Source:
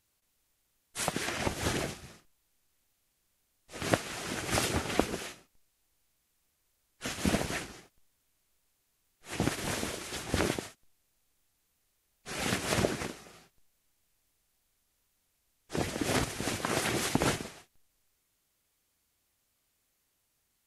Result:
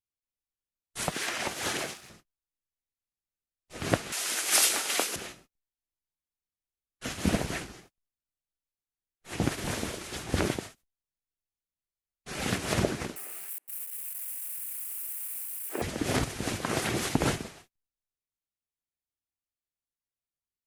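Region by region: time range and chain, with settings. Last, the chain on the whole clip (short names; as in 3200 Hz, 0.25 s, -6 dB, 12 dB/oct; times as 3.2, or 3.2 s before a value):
1.12–2.1 HPF 820 Hz 6 dB/oct + sample leveller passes 1
4.12–5.16 HPF 320 Hz + tilt +4 dB/oct + doubler 24 ms -13 dB
13.16–15.82 switching spikes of -31.5 dBFS + HPF 290 Hz 24 dB/oct + band shelf 4800 Hz -13 dB 1.3 oct
whole clip: gate -57 dBFS, range -24 dB; low shelf 270 Hz +4 dB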